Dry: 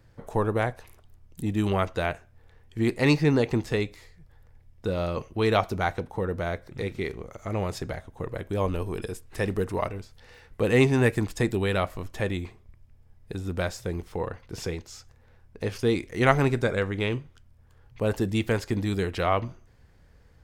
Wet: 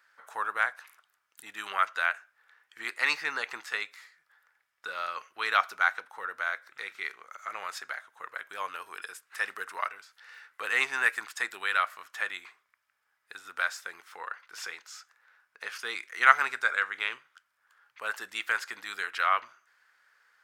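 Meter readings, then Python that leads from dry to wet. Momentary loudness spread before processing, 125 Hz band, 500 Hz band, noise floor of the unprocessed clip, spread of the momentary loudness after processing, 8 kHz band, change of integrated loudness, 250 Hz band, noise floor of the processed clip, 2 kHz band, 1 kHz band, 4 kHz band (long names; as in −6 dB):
13 LU, below −40 dB, −18.5 dB, −57 dBFS, 15 LU, −1.5 dB, −3.0 dB, −29.5 dB, −76 dBFS, +5.0 dB, +1.0 dB, −0.5 dB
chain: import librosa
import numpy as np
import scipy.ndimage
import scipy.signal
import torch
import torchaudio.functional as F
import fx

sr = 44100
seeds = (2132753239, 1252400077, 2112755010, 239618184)

y = fx.highpass_res(x, sr, hz=1400.0, q=3.3)
y = y * librosa.db_to_amplitude(-2.0)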